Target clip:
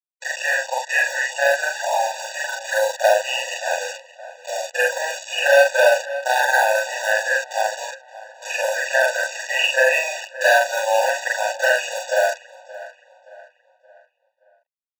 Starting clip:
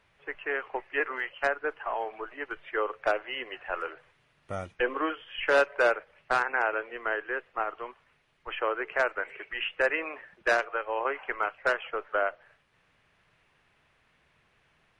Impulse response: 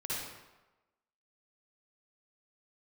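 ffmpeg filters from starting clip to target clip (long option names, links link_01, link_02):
-filter_complex "[0:a]afftfilt=real='re':imag='-im':win_size=4096:overlap=0.75,bandreject=frequency=224.9:width_type=h:width=4,bandreject=frequency=449.8:width_type=h:width=4,bandreject=frequency=674.7:width_type=h:width=4,bandreject=frequency=899.6:width_type=h:width=4,adynamicequalizer=threshold=0.00355:dfrequency=450:dqfactor=7.1:tfrequency=450:tqfactor=7.1:attack=5:release=100:ratio=0.375:range=2:mode=cutabove:tftype=bell,acrossover=split=310[link_01][link_02];[link_01]acompressor=threshold=-40dB:ratio=8[link_03];[link_03][link_02]amix=inputs=2:normalize=0,aresample=16000,acrusher=bits=7:mix=0:aa=0.000001,aresample=44100,aemphasis=mode=production:type=50kf,asplit=2[link_04][link_05];[link_05]acrusher=samples=32:mix=1:aa=0.000001:lfo=1:lforange=32:lforate=0.26,volume=-7dB[link_06];[link_04][link_06]amix=inputs=2:normalize=0,asplit=2[link_07][link_08];[link_08]adelay=573,lowpass=frequency=3400:poles=1,volume=-17.5dB,asplit=2[link_09][link_10];[link_10]adelay=573,lowpass=frequency=3400:poles=1,volume=0.44,asplit=2[link_11][link_12];[link_12]adelay=573,lowpass=frequency=3400:poles=1,volume=0.44,asplit=2[link_13][link_14];[link_14]adelay=573,lowpass=frequency=3400:poles=1,volume=0.44[link_15];[link_07][link_09][link_11][link_13][link_15]amix=inputs=5:normalize=0,alimiter=level_in=17.5dB:limit=-1dB:release=50:level=0:latency=1,afftfilt=real='re*eq(mod(floor(b*sr/1024/490),2),1)':imag='im*eq(mod(floor(b*sr/1024/490),2),1)':win_size=1024:overlap=0.75,volume=-1dB"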